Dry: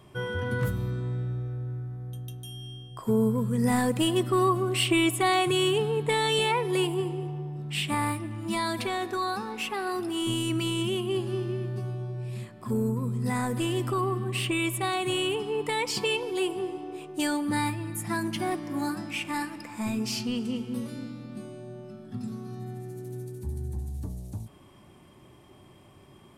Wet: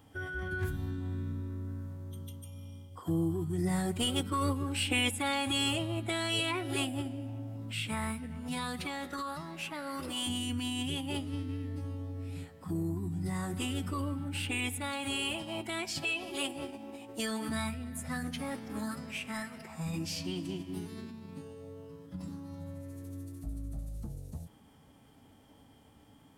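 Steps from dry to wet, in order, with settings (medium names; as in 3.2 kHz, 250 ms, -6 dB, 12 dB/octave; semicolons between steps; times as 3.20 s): bit crusher 11-bit; formant-preserving pitch shift -5 st; dynamic bell 670 Hz, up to -6 dB, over -41 dBFS, Q 0.81; trim -5 dB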